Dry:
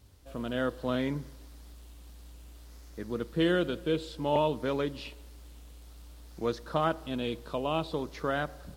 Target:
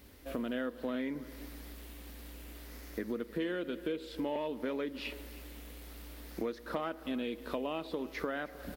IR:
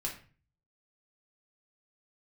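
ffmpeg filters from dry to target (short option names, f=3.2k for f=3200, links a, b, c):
-filter_complex "[0:a]asplit=2[a][b];[b]volume=20.5dB,asoftclip=hard,volume=-20.5dB,volume=-6.5dB[c];[a][c]amix=inputs=2:normalize=0,equalizer=f=125:t=o:w=1:g=-11,equalizer=f=250:t=o:w=1:g=10,equalizer=f=500:t=o:w=1:g=5,equalizer=f=2k:t=o:w=1:g=10,equalizer=f=8k:t=o:w=1:g=-6,acompressor=threshold=-32dB:ratio=6,highshelf=f=8.1k:g=12,aecho=1:1:313:0.112,volume=-2dB"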